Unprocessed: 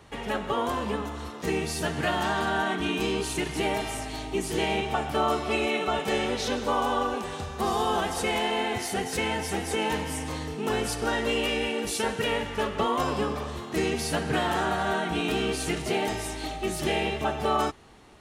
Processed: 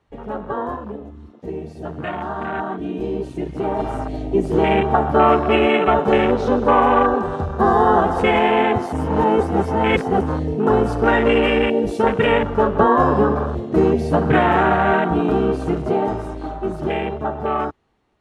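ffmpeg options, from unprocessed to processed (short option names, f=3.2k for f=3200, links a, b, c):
-filter_complex "[0:a]asplit=3[a][b][c];[a]afade=t=out:st=0.75:d=0.02[d];[b]flanger=delay=1.4:depth=9.8:regen=-56:speed=1.3:shape=triangular,afade=t=in:st=0.75:d=0.02,afade=t=out:st=3.78:d=0.02[e];[c]afade=t=in:st=3.78:d=0.02[f];[d][e][f]amix=inputs=3:normalize=0,asplit=3[g][h][i];[g]atrim=end=8.932[j];[h]atrim=start=8.928:end=10.212,asetpts=PTS-STARTPTS,areverse[k];[i]atrim=start=10.208[l];[j][k]acrossfade=d=0.004:c1=hsin:c2=hsin[m];[m][l]acrossfade=d=0.004:c1=hsin:c2=hsin,lowpass=f=2.8k:p=1,afwtdn=0.0251,dynaudnorm=f=710:g=9:m=10dB,volume=3dB"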